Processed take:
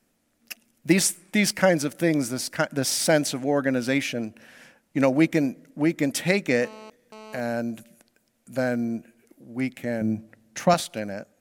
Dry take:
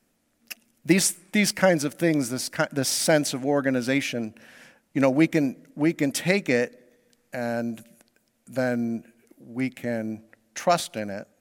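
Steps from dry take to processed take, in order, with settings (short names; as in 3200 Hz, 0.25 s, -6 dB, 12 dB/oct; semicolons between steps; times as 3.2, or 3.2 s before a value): 6.62–7.4 GSM buzz -43 dBFS; 10.01–10.74 bell 140 Hz +12 dB 1.6 oct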